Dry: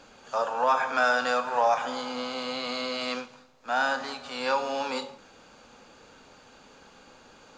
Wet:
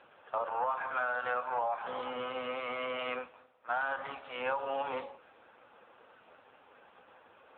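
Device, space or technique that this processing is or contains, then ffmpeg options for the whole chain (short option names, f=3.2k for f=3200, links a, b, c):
voicemail: -filter_complex "[0:a]asettb=1/sr,asplit=3[a][b][c];[a]atrim=end=2.314[d];[b]atrim=start=2.31:end=3.08,asetpts=PTS-STARTPTS,afade=t=in:d=0.004:c=qsin,afade=t=out:st=0.766:d=0.004:c=qsin,highpass=f=49:p=1[e];[c]atrim=start=3.076[f];[d][e]acrossfade=d=0.004:c1=hsin:c2=qsin[g];[g][f]acrossfade=d=0.004:c1=qsin:c2=hsin,highpass=410,lowpass=2.7k,acompressor=threshold=-28dB:ratio=10" -ar 8000 -c:a libopencore_amrnb -b:a 5900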